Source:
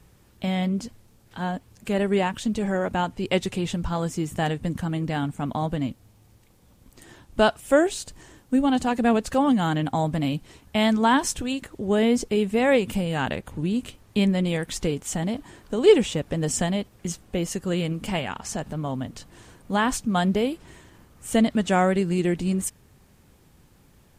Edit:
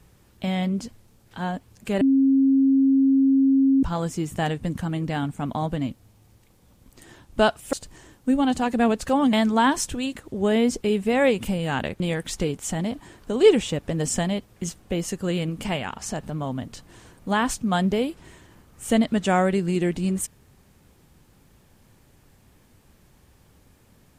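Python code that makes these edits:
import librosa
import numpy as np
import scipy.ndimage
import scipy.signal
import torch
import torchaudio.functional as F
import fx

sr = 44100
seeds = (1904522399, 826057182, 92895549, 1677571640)

y = fx.edit(x, sr, fx.bleep(start_s=2.01, length_s=1.82, hz=270.0, db=-14.5),
    fx.cut(start_s=7.73, length_s=0.25),
    fx.cut(start_s=9.58, length_s=1.22),
    fx.cut(start_s=13.47, length_s=0.96), tone=tone)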